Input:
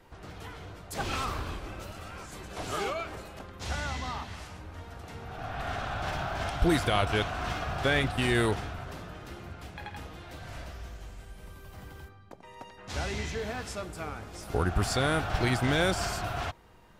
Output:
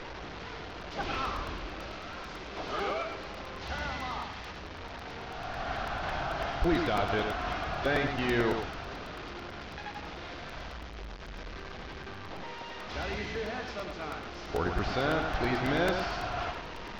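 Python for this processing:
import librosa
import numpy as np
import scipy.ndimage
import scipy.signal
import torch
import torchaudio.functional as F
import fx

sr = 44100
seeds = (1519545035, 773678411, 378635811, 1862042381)

p1 = fx.delta_mod(x, sr, bps=32000, step_db=-34.5)
p2 = fx.peak_eq(p1, sr, hz=97.0, db=-8.5, octaves=1.5)
p3 = 10.0 ** (-29.5 / 20.0) * np.tanh(p2 / 10.0 ** (-29.5 / 20.0))
p4 = p2 + F.gain(torch.from_numpy(p3), -9.5).numpy()
p5 = fx.air_absorb(p4, sr, metres=140.0)
p6 = p5 + fx.echo_single(p5, sr, ms=100, db=-6.0, dry=0)
p7 = fx.buffer_crackle(p6, sr, first_s=0.7, period_s=0.11, block=128, kind='repeat')
y = F.gain(torch.from_numpy(p7), -2.0).numpy()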